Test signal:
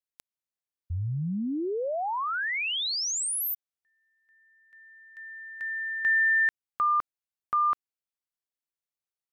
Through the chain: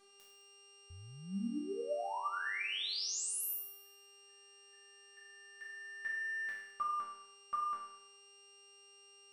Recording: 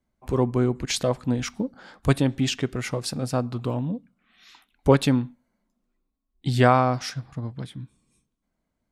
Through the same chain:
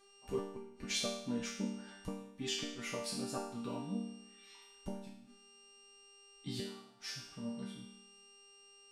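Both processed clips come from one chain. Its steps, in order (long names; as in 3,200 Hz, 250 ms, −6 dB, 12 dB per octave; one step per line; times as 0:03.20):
hum with harmonics 400 Hz, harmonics 23, −53 dBFS −3 dB per octave
gate with flip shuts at −13 dBFS, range −29 dB
resonators tuned to a chord G3 minor, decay 0.73 s
level +11.5 dB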